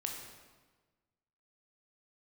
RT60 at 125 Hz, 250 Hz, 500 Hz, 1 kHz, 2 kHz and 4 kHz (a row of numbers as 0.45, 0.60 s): 1.6, 1.5, 1.4, 1.3, 1.2, 1.1 s